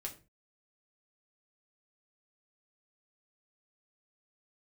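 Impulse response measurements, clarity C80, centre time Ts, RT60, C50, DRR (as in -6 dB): 18.0 dB, 12 ms, 0.30 s, 13.5 dB, 0.5 dB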